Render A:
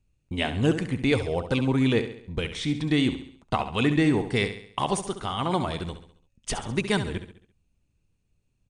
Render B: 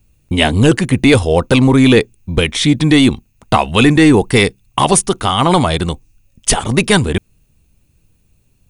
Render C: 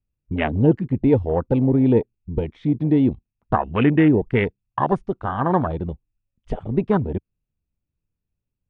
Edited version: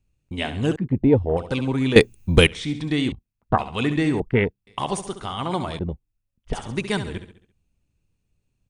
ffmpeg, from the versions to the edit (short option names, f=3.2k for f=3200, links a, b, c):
-filter_complex "[2:a]asplit=4[a][b][c][d];[0:a]asplit=6[e][f][g][h][i][j];[e]atrim=end=0.762[k];[a]atrim=start=0.758:end=1.372[l];[f]atrim=start=1.368:end=1.962[m];[1:a]atrim=start=1.958:end=2.472[n];[g]atrim=start=2.468:end=3.122[o];[b]atrim=start=3.118:end=3.582[p];[h]atrim=start=3.578:end=4.202[q];[c]atrim=start=4.198:end=4.672[r];[i]atrim=start=4.668:end=5.792[s];[d]atrim=start=5.788:end=6.532[t];[j]atrim=start=6.528[u];[k][l]acrossfade=d=0.004:c1=hsin:c2=hsin[v];[v][m]acrossfade=d=0.004:c1=hsin:c2=hsin[w];[w][n]acrossfade=d=0.004:c1=hsin:c2=hsin[x];[x][o]acrossfade=d=0.004:c1=hsin:c2=hsin[y];[y][p]acrossfade=d=0.004:c1=hsin:c2=hsin[z];[z][q]acrossfade=d=0.004:c1=hsin:c2=hsin[aa];[aa][r]acrossfade=d=0.004:c1=hsin:c2=hsin[ab];[ab][s]acrossfade=d=0.004:c1=hsin:c2=hsin[ac];[ac][t]acrossfade=d=0.004:c1=hsin:c2=hsin[ad];[ad][u]acrossfade=d=0.004:c1=hsin:c2=hsin"